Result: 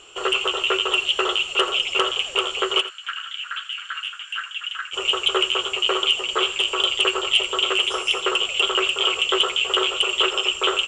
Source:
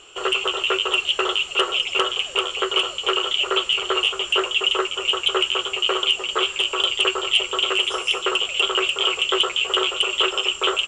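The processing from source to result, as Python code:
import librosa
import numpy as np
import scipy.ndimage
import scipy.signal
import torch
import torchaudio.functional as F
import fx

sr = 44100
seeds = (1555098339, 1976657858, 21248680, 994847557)

y = fx.ladder_highpass(x, sr, hz=1500.0, resonance_pct=80, at=(2.8, 4.92), fade=0.02)
y = y + 10.0 ** (-14.5 / 20.0) * np.pad(y, (int(84 * sr / 1000.0), 0))[:len(y)]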